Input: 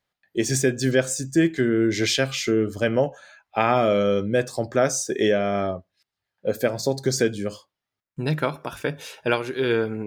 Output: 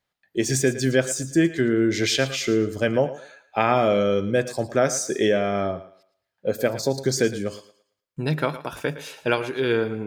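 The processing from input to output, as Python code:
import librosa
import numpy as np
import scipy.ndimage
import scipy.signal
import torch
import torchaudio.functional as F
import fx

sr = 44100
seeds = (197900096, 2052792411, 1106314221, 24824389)

y = fx.echo_thinned(x, sr, ms=112, feedback_pct=30, hz=260.0, wet_db=-14)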